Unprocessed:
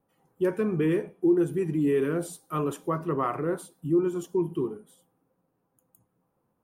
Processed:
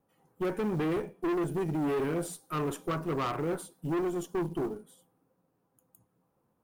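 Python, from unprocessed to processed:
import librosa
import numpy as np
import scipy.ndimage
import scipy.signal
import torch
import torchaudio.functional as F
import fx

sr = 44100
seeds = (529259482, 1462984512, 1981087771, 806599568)

y = fx.tube_stage(x, sr, drive_db=29.0, bias=0.5)
y = fx.quant_float(y, sr, bits=4)
y = F.gain(torch.from_numpy(y), 2.0).numpy()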